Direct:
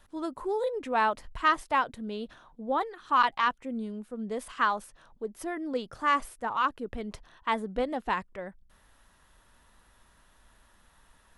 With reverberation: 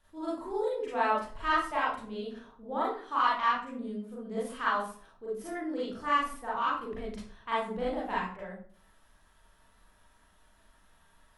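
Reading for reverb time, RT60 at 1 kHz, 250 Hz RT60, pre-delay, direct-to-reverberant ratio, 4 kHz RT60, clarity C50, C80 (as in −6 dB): 0.50 s, 0.45 s, 0.60 s, 34 ms, −8.5 dB, 0.35 s, 0.0 dB, 7.0 dB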